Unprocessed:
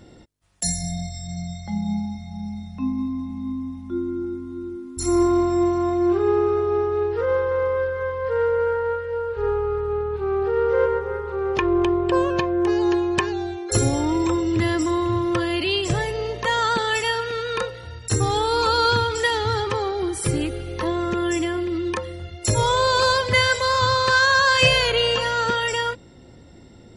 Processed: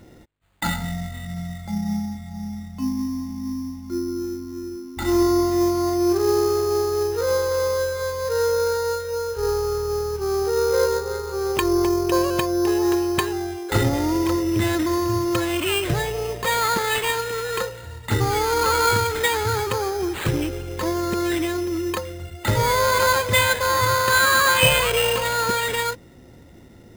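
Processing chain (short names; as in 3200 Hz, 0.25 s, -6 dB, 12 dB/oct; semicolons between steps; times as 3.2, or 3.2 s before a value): sample-rate reducer 5600 Hz, jitter 0%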